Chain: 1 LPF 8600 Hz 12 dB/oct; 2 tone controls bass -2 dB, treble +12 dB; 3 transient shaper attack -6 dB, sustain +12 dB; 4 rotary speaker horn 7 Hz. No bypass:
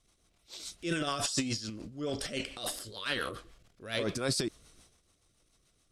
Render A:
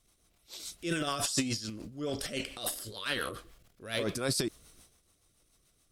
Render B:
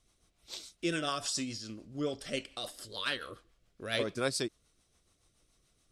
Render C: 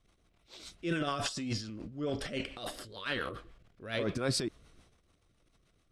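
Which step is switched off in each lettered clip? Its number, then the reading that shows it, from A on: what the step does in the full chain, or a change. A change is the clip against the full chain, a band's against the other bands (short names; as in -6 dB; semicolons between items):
1, 8 kHz band +1.5 dB; 3, 125 Hz band -3.5 dB; 2, 8 kHz band -6.0 dB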